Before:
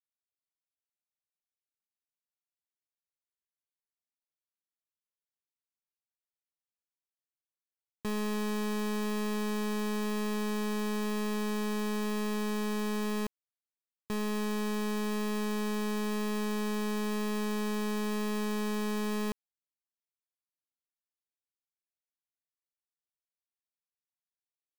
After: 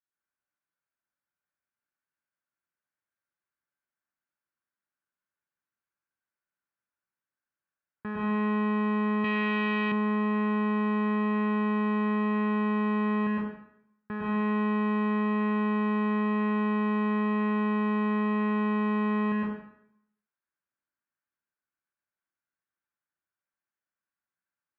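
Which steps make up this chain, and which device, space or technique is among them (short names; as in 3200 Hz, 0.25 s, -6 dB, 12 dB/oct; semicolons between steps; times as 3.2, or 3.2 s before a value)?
plate-style reverb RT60 0.73 s, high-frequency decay 0.9×, pre-delay 95 ms, DRR -6 dB; 9.24–9.92 weighting filter D; bass cabinet (speaker cabinet 84–2100 Hz, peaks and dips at 450 Hz -5 dB, 680 Hz -4 dB, 1500 Hz +9 dB)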